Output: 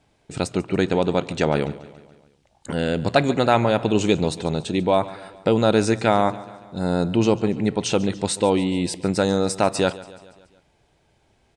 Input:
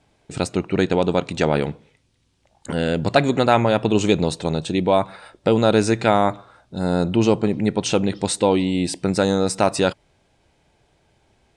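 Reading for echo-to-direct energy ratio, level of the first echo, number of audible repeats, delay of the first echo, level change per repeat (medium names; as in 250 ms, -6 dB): -17.0 dB, -18.5 dB, 4, 142 ms, -5.0 dB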